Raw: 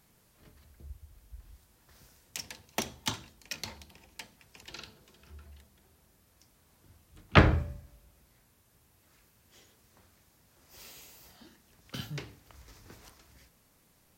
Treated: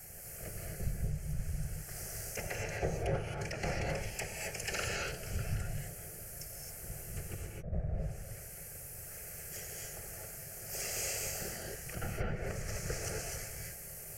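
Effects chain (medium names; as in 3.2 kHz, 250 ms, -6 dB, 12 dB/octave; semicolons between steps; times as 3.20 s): low-pass that closes with the level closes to 1.3 kHz, closed at -37.5 dBFS; FFT filter 670 Hz 0 dB, 1.2 kHz -5 dB, 9.3 kHz +6 dB; compressor with a negative ratio -44 dBFS, ratio -0.5; whisper effect; static phaser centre 1 kHz, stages 6; gated-style reverb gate 290 ms rising, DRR -1.5 dB; trim +7.5 dB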